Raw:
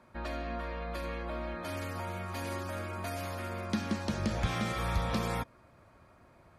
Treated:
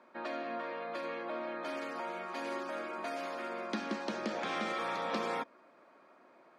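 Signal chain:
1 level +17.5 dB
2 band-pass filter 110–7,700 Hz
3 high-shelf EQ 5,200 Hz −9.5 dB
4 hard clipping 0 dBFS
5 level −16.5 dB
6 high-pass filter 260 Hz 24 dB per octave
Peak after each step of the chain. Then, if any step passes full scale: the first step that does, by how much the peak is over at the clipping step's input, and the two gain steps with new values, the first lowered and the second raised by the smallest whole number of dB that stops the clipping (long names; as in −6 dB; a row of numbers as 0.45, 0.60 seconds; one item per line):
−2.0, −3.0, −3.0, −3.0, −19.5, −23.0 dBFS
no step passes full scale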